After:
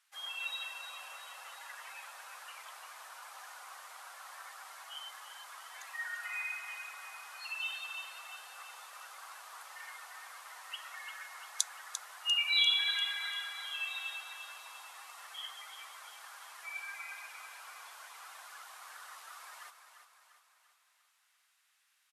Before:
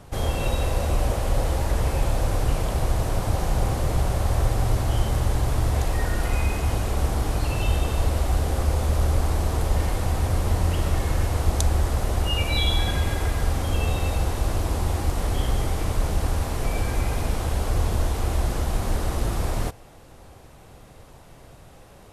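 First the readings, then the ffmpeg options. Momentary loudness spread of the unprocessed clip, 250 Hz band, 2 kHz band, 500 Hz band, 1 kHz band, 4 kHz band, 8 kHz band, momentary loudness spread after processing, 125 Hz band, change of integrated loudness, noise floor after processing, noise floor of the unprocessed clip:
3 LU, below −40 dB, −4.0 dB, −33.5 dB, −16.5 dB, −1.5 dB, −10.0 dB, 16 LU, below −40 dB, −12.5 dB, −73 dBFS, −48 dBFS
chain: -af "afftdn=noise_reduction=16:noise_floor=-33,highpass=frequency=1500:width=0.5412,highpass=frequency=1500:width=1.3066,aecho=1:1:346|692|1038|1384|1730|2076:0.355|0.185|0.0959|0.0499|0.0259|0.0135"

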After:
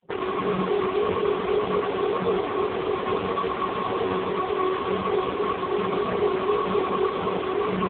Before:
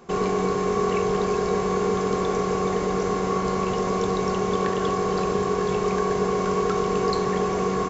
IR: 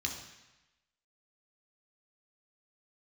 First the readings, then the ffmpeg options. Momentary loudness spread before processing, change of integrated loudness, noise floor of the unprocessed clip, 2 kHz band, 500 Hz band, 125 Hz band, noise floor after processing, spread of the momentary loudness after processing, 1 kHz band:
1 LU, −1.5 dB, −25 dBFS, 0.0 dB, −1.0 dB, −6.0 dB, −29 dBFS, 3 LU, −1.0 dB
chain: -filter_complex "[0:a]flanger=delay=1.3:depth=2.3:regen=-7:speed=1.8:shape=triangular,equalizer=frequency=900:width_type=o:width=1.1:gain=3,bandreject=frequency=118:width_type=h:width=4,bandreject=frequency=236:width_type=h:width=4,bandreject=frequency=354:width_type=h:width=4,bandreject=frequency=472:width_type=h:width=4,bandreject=frequency=590:width_type=h:width=4,bandreject=frequency=708:width_type=h:width=4,bandreject=frequency=826:width_type=h:width=4,bandreject=frequency=944:width_type=h:width=4,bandreject=frequency=1062:width_type=h:width=4,asplit=2[link_01][link_02];[link_02]alimiter=limit=-21dB:level=0:latency=1:release=39,volume=-0.5dB[link_03];[link_01][link_03]amix=inputs=2:normalize=0,flanger=delay=17.5:depth=6.9:speed=0.55,lowshelf=frequency=89:gain=11,aecho=1:1:134.1|253.6:0.562|0.447,aresample=11025,acrusher=bits=5:dc=4:mix=0:aa=0.000001,aresample=44100,afftdn=noise_reduction=24:noise_floor=-39" -ar 8000 -c:a libopencore_amrnb -b:a 5150

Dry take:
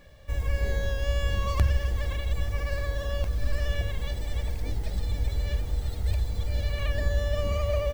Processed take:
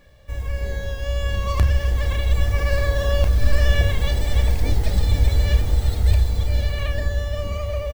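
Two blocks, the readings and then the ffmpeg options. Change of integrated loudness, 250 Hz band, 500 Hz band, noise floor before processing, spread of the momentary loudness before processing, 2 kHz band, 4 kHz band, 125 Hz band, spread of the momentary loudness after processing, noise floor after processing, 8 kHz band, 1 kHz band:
+8.0 dB, +7.5 dB, +5.0 dB, −34 dBFS, 5 LU, +7.0 dB, +7.5 dB, +8.0 dB, 8 LU, −29 dBFS, +8.0 dB, +6.0 dB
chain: -filter_complex "[0:a]dynaudnorm=framelen=220:gausssize=17:maxgain=11.5dB,asplit=2[link_01][link_02];[link_02]adelay=32,volume=-11dB[link_03];[link_01][link_03]amix=inputs=2:normalize=0"

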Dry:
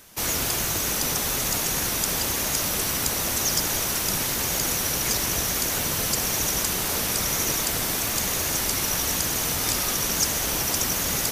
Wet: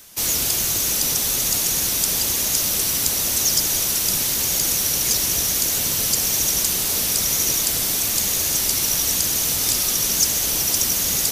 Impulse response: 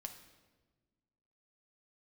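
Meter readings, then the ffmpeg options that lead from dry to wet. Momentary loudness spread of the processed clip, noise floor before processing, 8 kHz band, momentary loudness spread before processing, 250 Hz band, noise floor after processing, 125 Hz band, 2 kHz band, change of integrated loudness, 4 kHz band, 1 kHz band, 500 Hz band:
1 LU, −27 dBFS, +5.5 dB, 1 LU, −1.0 dB, −22 dBFS, −1.0 dB, −1.0 dB, +5.0 dB, +4.5 dB, −3.5 dB, −2.0 dB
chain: -filter_complex "[0:a]acrossover=split=660|2900[link_01][link_02][link_03];[link_02]asoftclip=type=tanh:threshold=-35.5dB[link_04];[link_03]acontrast=82[link_05];[link_01][link_04][link_05]amix=inputs=3:normalize=0,volume=-1dB"

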